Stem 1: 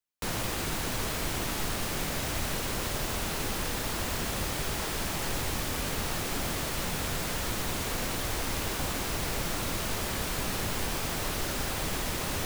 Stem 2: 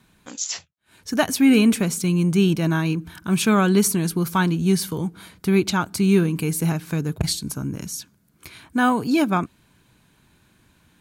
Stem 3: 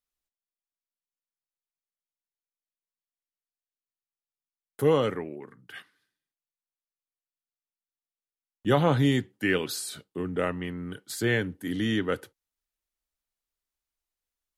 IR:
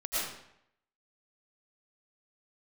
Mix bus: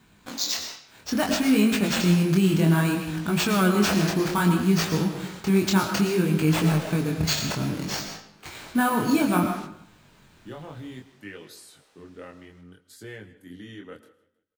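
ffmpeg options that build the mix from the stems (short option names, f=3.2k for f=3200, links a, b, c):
-filter_complex "[0:a]acrossover=split=330 7500:gain=0.0708 1 0.178[a][b][c];[a][b][c]amix=inputs=3:normalize=0,volume=-7dB,asplit=2[d][e];[e]volume=-23dB[f];[1:a]acrusher=samples=4:mix=1:aa=0.000001,alimiter=limit=-15.5dB:level=0:latency=1:release=55,volume=2.5dB,asplit=3[g][h][i];[h]volume=-10.5dB[j];[2:a]acompressor=threshold=-22dB:ratio=6,adelay=1800,volume=-10.5dB,asplit=3[k][l][m];[l]volume=-22.5dB[n];[m]volume=-20dB[o];[i]apad=whole_len=549084[p];[d][p]sidechaingate=range=-21dB:threshold=-48dB:ratio=16:detection=peak[q];[3:a]atrim=start_sample=2205[r];[j][n]amix=inputs=2:normalize=0[s];[s][r]afir=irnorm=-1:irlink=0[t];[f][o]amix=inputs=2:normalize=0,aecho=0:1:157|314|471|628|785:1|0.37|0.137|0.0507|0.0187[u];[q][g][k][t][u]amix=inputs=5:normalize=0,flanger=delay=19:depth=7.2:speed=0.61"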